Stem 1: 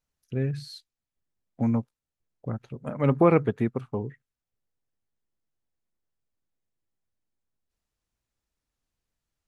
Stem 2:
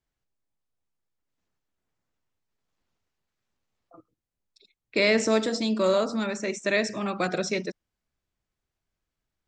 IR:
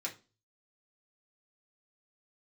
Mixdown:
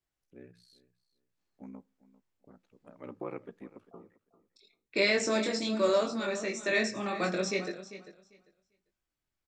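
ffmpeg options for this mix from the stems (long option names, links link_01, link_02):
-filter_complex "[0:a]highpass=frequency=190:width=0.5412,highpass=frequency=190:width=1.3066,aeval=exprs='val(0)*sin(2*PI*31*n/s)':channel_layout=same,volume=-17.5dB,asplit=3[link_01][link_02][link_03];[link_02]volume=-16dB[link_04];[link_03]volume=-18dB[link_05];[1:a]flanger=delay=20:depth=4.5:speed=0.78,volume=-3dB,asplit=3[link_06][link_07][link_08];[link_07]volume=-6dB[link_09];[link_08]volume=-12dB[link_10];[2:a]atrim=start_sample=2205[link_11];[link_04][link_09]amix=inputs=2:normalize=0[link_12];[link_12][link_11]afir=irnorm=-1:irlink=0[link_13];[link_05][link_10]amix=inputs=2:normalize=0,aecho=0:1:396|792|1188:1|0.17|0.0289[link_14];[link_01][link_06][link_13][link_14]amix=inputs=4:normalize=0"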